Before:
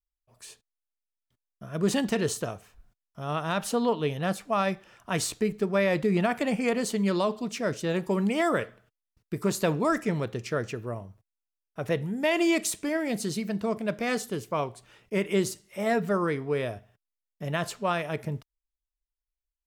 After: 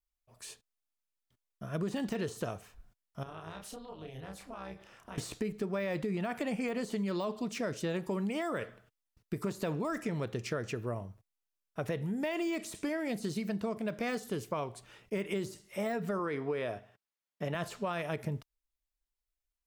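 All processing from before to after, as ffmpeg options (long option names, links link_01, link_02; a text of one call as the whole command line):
ffmpeg -i in.wav -filter_complex "[0:a]asettb=1/sr,asplit=3[link_01][link_02][link_03];[link_01]atrim=end=3.234[link_04];[link_02]atrim=start=3.23:end=5.18,asetpts=PTS-STARTPTS,afade=type=in:duration=0.004:curve=qsin,afade=type=out:start_time=1.946:duration=0.004:curve=qsin,tremolo=f=260:d=0.788,acompressor=threshold=-44dB:ratio=5:attack=3.2:release=140:knee=1:detection=peak,asplit=2[link_05][link_06];[link_06]adelay=31,volume=-4dB[link_07];[link_05][link_07]amix=inputs=2:normalize=0,atrim=end_sample=85995[link_08];[link_03]atrim=start=5.176[link_09];[link_04][link_08]acrossfade=duration=0.004:curve1=hsin:curve2=qsin[link_10];[link_10][link_09]acrossfade=duration=0.004:curve1=qsin:curve2=hsin,asettb=1/sr,asplit=3[link_11][link_12][link_13];[link_11]atrim=end=16.194[link_14];[link_12]atrim=start=16.19:end=17.55,asetpts=PTS-STARTPTS,afade=type=in:duration=0.004:curve=qsin,afade=type=out:start_time=1.356:duration=0.004:curve=qsin,highpass=frequency=300:poles=1,highshelf=frequency=6100:gain=-11,acontrast=20[link_15];[link_13]atrim=start=17.546[link_16];[link_14][link_15]acrossfade=duration=0.004:curve1=hsin:curve2=qsin[link_17];[link_17][link_16]acrossfade=duration=0.004:curve1=qsin:curve2=hsin,deesser=0.9,alimiter=limit=-19.5dB:level=0:latency=1:release=36,acompressor=threshold=-31dB:ratio=6" out.wav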